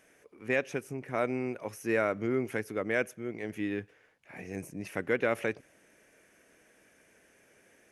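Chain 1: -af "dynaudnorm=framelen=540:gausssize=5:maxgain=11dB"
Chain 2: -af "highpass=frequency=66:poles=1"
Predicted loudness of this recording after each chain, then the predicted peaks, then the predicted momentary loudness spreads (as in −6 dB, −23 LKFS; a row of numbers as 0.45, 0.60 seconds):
−24.0, −33.0 LKFS; −4.0, −14.5 dBFS; 14, 12 LU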